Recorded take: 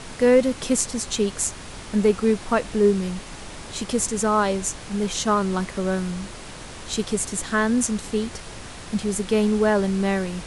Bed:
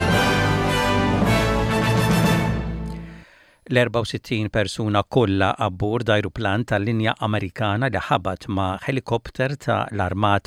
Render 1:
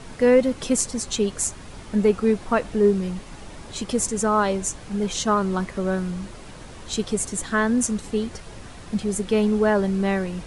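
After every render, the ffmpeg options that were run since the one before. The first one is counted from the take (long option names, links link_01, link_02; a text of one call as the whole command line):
ffmpeg -i in.wav -af "afftdn=noise_reduction=7:noise_floor=-38" out.wav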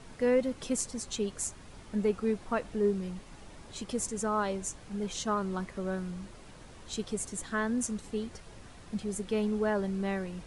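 ffmpeg -i in.wav -af "volume=-10dB" out.wav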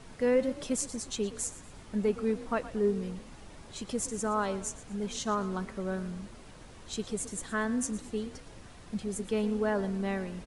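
ffmpeg -i in.wav -filter_complex "[0:a]asplit=4[link_01][link_02][link_03][link_04];[link_02]adelay=117,afreqshift=33,volume=-16dB[link_05];[link_03]adelay=234,afreqshift=66,volume=-24.9dB[link_06];[link_04]adelay=351,afreqshift=99,volume=-33.7dB[link_07];[link_01][link_05][link_06][link_07]amix=inputs=4:normalize=0" out.wav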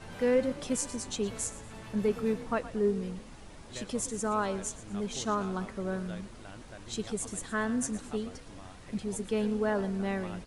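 ffmpeg -i in.wav -i bed.wav -filter_complex "[1:a]volume=-28dB[link_01];[0:a][link_01]amix=inputs=2:normalize=0" out.wav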